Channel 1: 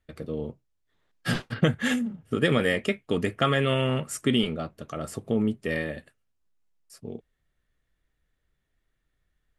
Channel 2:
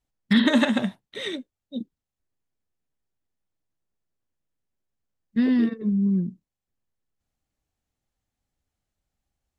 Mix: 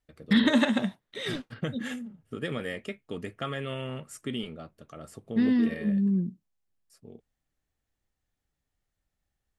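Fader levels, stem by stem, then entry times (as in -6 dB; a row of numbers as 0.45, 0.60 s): -10.5, -3.0 dB; 0.00, 0.00 s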